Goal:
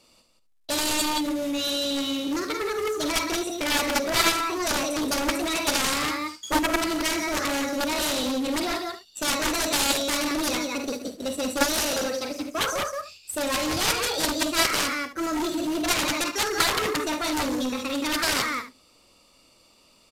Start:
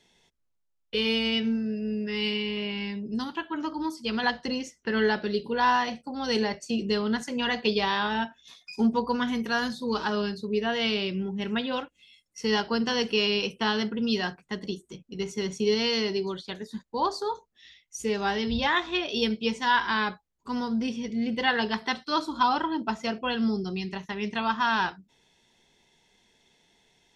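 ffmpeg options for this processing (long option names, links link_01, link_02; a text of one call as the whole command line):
ffmpeg -i in.wav -filter_complex "[0:a]asetrate=59535,aresample=44100,asplit=2[link_01][link_02];[link_02]aecho=0:1:72:0.224[link_03];[link_01][link_03]amix=inputs=2:normalize=0,acrusher=bits=3:mode=log:mix=0:aa=0.000001,asplit=2[link_04][link_05];[link_05]aecho=0:1:46.65|174.9:0.398|0.447[link_06];[link_04][link_06]amix=inputs=2:normalize=0,aeval=exprs='0.355*(cos(1*acos(clip(val(0)/0.355,-1,1)))-cos(1*PI/2))+0.141*(cos(7*acos(clip(val(0)/0.355,-1,1)))-cos(7*PI/2))':channel_layout=same,aresample=32000,aresample=44100" out.wav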